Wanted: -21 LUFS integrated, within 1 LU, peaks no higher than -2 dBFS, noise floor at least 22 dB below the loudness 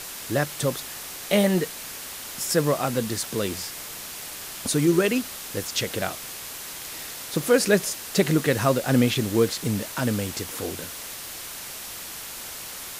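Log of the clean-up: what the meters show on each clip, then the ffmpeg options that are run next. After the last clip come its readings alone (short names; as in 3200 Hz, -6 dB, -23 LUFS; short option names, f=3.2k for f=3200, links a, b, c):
noise floor -37 dBFS; noise floor target -48 dBFS; loudness -26.0 LUFS; peak -6.0 dBFS; loudness target -21.0 LUFS
-> -af "afftdn=nr=11:nf=-37"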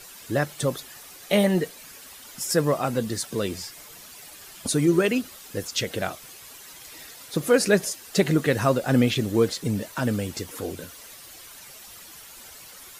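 noise floor -45 dBFS; noise floor target -47 dBFS
-> -af "afftdn=nr=6:nf=-45"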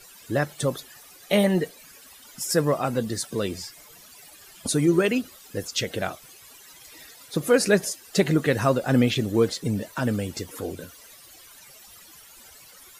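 noise floor -49 dBFS; loudness -25.0 LUFS; peak -6.5 dBFS; loudness target -21.0 LUFS
-> -af "volume=4dB"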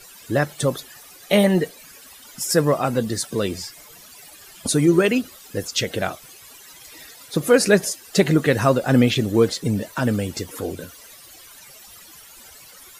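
loudness -21.0 LUFS; peak -2.5 dBFS; noise floor -45 dBFS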